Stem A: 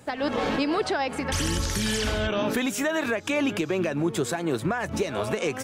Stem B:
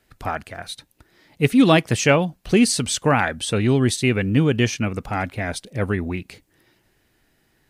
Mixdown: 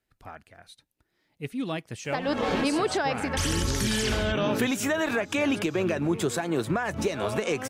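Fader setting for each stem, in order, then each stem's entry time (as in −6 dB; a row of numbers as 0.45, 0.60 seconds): −0.5, −17.0 decibels; 2.05, 0.00 seconds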